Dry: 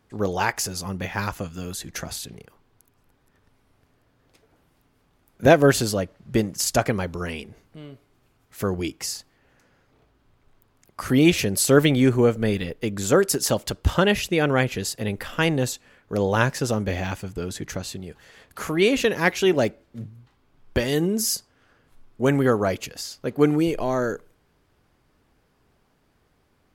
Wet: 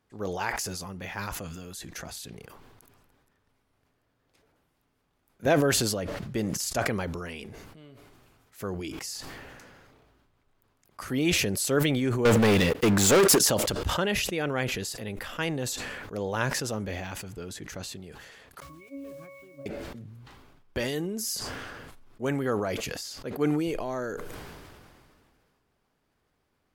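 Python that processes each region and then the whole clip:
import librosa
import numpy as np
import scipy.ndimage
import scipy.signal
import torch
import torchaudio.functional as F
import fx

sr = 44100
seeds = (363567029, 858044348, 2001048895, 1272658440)

y = fx.chain(x, sr, fx.highpass(hz=54.0, slope=24),
    fx.peak_eq(hz=130.0, db=-3.5, octaves=0.32),
    fx.leveller(passes=5), at=(12.25, 13.39))
y = fx.chain(y, sr, fx.octave_resonator(note='C#', decay_s=0.61),
    fx.quant_dither(seeds[0], bits=10, dither='none'), at=(18.6, 19.66))
y = fx.low_shelf(y, sr, hz=330.0, db=-3.5)
y = fx.sustainer(y, sr, db_per_s=26.0)
y = y * 10.0 ** (-8.0 / 20.0)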